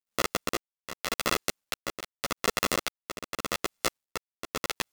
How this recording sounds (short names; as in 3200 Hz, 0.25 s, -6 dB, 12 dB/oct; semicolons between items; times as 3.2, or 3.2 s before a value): a buzz of ramps at a fixed pitch in blocks of 64 samples; tremolo triangle 0.86 Hz, depth 80%; a quantiser's noise floor 12-bit, dither none; a shimmering, thickened sound